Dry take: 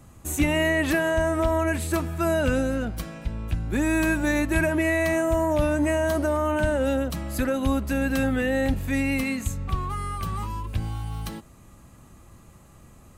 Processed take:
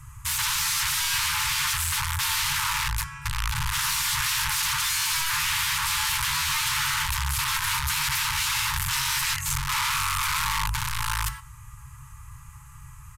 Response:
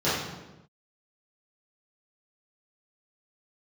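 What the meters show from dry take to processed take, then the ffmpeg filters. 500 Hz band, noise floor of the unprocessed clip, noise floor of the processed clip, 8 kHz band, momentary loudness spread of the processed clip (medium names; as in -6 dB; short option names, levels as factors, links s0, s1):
under -40 dB, -51 dBFS, -45 dBFS, +12.5 dB, 5 LU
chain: -filter_complex "[0:a]equalizer=f=250:t=o:w=0.67:g=-8,equalizer=f=630:t=o:w=0.67:g=-4,equalizer=f=4000:t=o:w=0.67:g=-10,asplit=2[s0][s1];[1:a]atrim=start_sample=2205[s2];[s1][s2]afir=irnorm=-1:irlink=0,volume=0.0335[s3];[s0][s3]amix=inputs=2:normalize=0,aeval=exprs='(mod(23.7*val(0)+1,2)-1)/23.7':c=same,aresample=32000,aresample=44100,afftfilt=real='re*(1-between(b*sr/4096,160,840))':imag='im*(1-between(b*sr/4096,160,840))':win_size=4096:overlap=0.75,volume=2.37"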